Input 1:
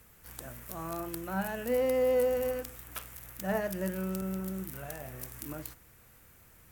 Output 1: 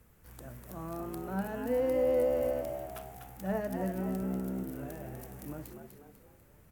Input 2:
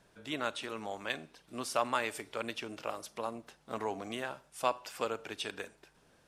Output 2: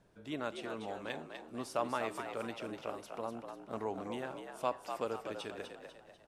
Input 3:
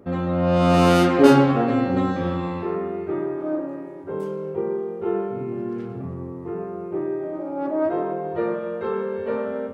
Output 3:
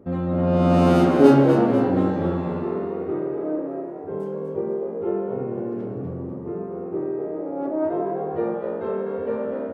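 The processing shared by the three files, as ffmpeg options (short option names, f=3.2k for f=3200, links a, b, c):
-filter_complex "[0:a]tiltshelf=f=970:g=5,asplit=2[a][b];[b]asplit=5[c][d][e][f][g];[c]adelay=247,afreqshift=69,volume=-7dB[h];[d]adelay=494,afreqshift=138,volume=-14.3dB[i];[e]adelay=741,afreqshift=207,volume=-21.7dB[j];[f]adelay=988,afreqshift=276,volume=-29dB[k];[g]adelay=1235,afreqshift=345,volume=-36.3dB[l];[h][i][j][k][l]amix=inputs=5:normalize=0[m];[a][m]amix=inputs=2:normalize=0,volume=-4.5dB"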